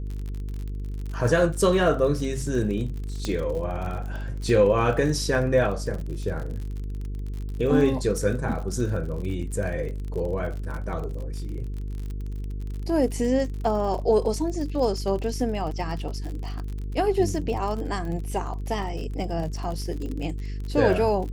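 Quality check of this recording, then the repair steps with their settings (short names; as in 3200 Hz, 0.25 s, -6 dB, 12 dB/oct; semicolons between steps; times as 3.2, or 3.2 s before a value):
buzz 50 Hz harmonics 9 -31 dBFS
crackle 46/s -32 dBFS
3.25 pop -15 dBFS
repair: de-click; de-hum 50 Hz, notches 9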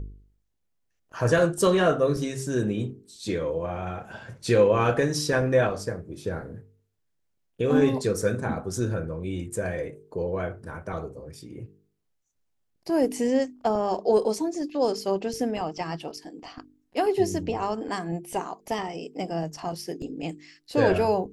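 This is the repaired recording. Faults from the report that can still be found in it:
none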